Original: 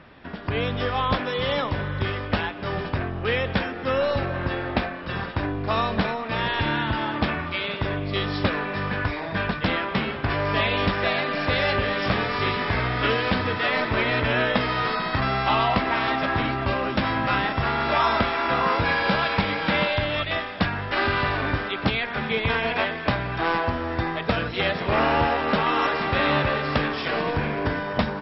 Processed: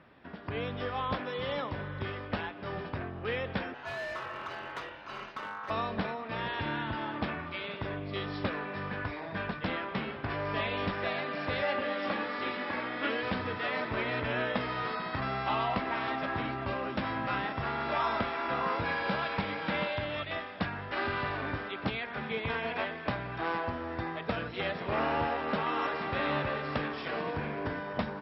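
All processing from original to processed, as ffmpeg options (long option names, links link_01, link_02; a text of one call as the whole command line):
ffmpeg -i in.wav -filter_complex "[0:a]asettb=1/sr,asplit=3[link_01][link_02][link_03];[link_01]atrim=end=3.744[link_04];[link_02]atrim=start=3.74:end=5.7,asetpts=PTS-STARTPTS,afade=type=in:duration=0.004:curve=qsin,afade=type=out:start_time=1.956:duration=0.004:curve=qsin,aeval=exprs='val(0)*sin(2*PI*1200*n/s)':channel_layout=same,asoftclip=type=hard:threshold=-23.5dB[link_05];[link_03]atrim=start=5.696[link_06];[link_04][link_05]acrossfade=duration=0.004:curve1=hsin:curve2=qsin[link_07];[link_07][link_06]acrossfade=duration=0.004:curve1=qsin:curve2=hsin,asettb=1/sr,asplit=3[link_08][link_09][link_10];[link_08]atrim=end=11.624[link_11];[link_09]atrim=start=11.62:end=13.23,asetpts=PTS-STARTPTS,afade=type=in:duration=0.004:curve=qsin,afade=type=out:start_time=1.606:duration=0.004:curve=qsin,highpass=200,lowpass=4600,aecho=1:1:3.6:0.62,atrim=end_sample=71001[link_12];[link_10]atrim=start=13.226[link_13];[link_11][link_12]acrossfade=duration=0.004:curve1=hsin:curve2=qsin[link_14];[link_14][link_13]acrossfade=duration=0.004:curve1=qsin:curve2=hsin,highpass=frequency=100:poles=1,highshelf=frequency=3700:gain=-7.5,volume=-8.5dB" out.wav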